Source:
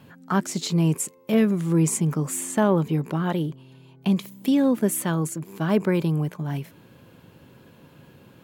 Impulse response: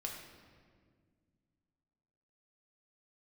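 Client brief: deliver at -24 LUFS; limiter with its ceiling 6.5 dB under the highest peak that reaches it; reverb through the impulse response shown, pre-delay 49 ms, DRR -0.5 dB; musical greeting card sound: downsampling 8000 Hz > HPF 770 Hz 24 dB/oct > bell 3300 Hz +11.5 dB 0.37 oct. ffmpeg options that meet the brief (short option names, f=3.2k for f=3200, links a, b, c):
-filter_complex "[0:a]alimiter=limit=-15dB:level=0:latency=1,asplit=2[a][b];[1:a]atrim=start_sample=2205,adelay=49[c];[b][c]afir=irnorm=-1:irlink=0,volume=1dB[d];[a][d]amix=inputs=2:normalize=0,aresample=8000,aresample=44100,highpass=f=770:w=0.5412,highpass=f=770:w=1.3066,equalizer=f=3.3k:t=o:w=0.37:g=11.5,volume=9.5dB"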